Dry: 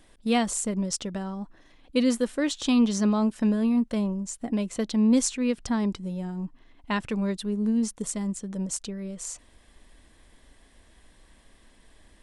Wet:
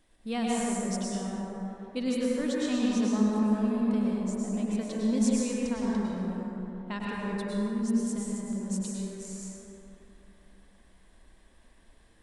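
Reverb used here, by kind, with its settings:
dense smooth reverb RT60 3.2 s, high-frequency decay 0.35×, pre-delay 90 ms, DRR −5.5 dB
level −10 dB

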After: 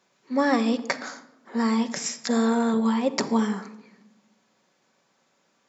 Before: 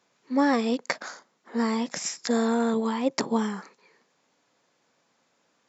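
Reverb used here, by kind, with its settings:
rectangular room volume 3,900 cubic metres, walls furnished, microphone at 1.1 metres
level +1 dB

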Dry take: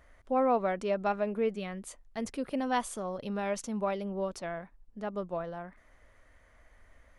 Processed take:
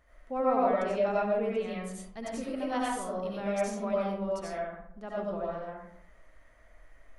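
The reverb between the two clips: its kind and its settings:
comb and all-pass reverb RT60 0.73 s, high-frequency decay 0.5×, pre-delay 50 ms, DRR −6 dB
level −6 dB

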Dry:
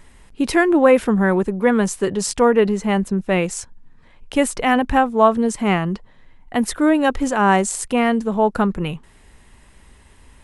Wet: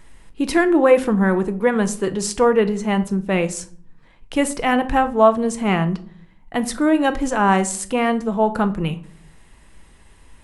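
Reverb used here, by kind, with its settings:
rectangular room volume 520 cubic metres, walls furnished, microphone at 0.69 metres
level −1.5 dB

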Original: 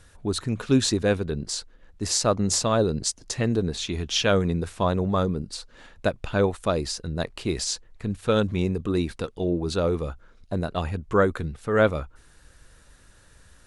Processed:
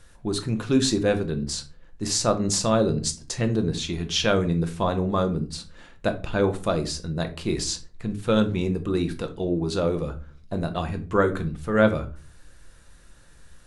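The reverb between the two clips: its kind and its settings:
rectangular room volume 240 cubic metres, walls furnished, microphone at 0.83 metres
level −1 dB

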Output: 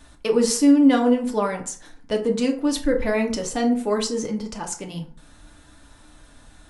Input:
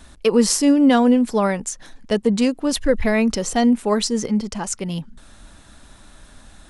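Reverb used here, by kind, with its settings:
feedback delay network reverb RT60 0.49 s, low-frequency decay 0.85×, high-frequency decay 0.55×, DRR 1.5 dB
level −5.5 dB

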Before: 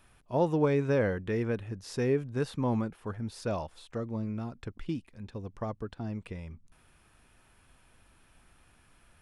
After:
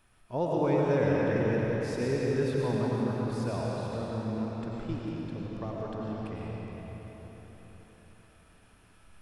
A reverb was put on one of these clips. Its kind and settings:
comb and all-pass reverb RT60 4.7 s, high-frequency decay 0.85×, pre-delay 65 ms, DRR −5 dB
level −4 dB

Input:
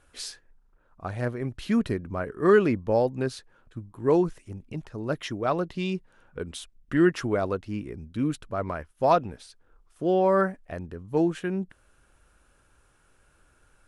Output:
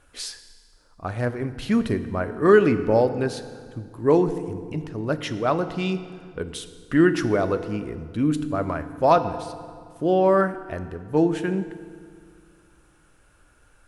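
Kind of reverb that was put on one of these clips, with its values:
feedback delay network reverb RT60 2 s, low-frequency decay 1.3×, high-frequency decay 0.75×, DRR 10 dB
level +3.5 dB

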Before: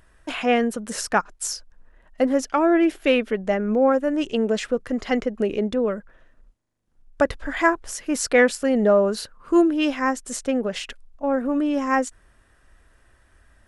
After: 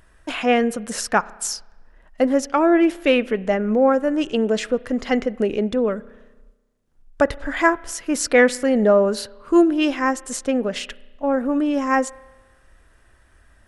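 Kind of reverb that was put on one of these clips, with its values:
spring reverb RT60 1.2 s, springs 32 ms, chirp 60 ms, DRR 20 dB
level +2 dB

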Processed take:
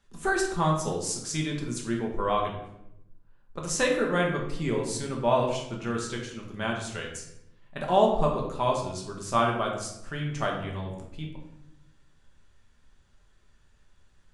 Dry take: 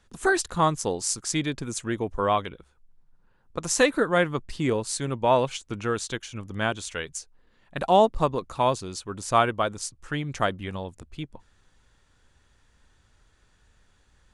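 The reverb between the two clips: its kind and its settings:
rectangular room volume 230 cubic metres, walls mixed, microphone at 1.2 metres
level −6.5 dB

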